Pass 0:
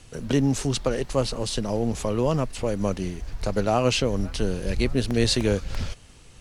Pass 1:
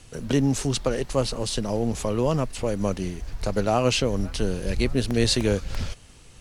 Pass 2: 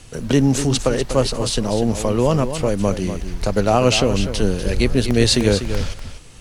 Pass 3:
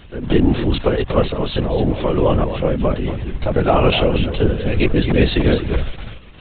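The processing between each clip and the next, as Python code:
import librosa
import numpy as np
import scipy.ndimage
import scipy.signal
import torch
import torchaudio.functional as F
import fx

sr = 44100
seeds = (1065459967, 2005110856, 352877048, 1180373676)

y1 = fx.high_shelf(x, sr, hz=9000.0, db=3.5)
y2 = y1 + 10.0 ** (-10.0 / 20.0) * np.pad(y1, (int(245 * sr / 1000.0), 0))[:len(y1)]
y2 = F.gain(torch.from_numpy(y2), 6.0).numpy()
y3 = fx.lpc_vocoder(y2, sr, seeds[0], excitation='whisper', order=16)
y3 = F.gain(torch.from_numpy(y3), 1.5).numpy()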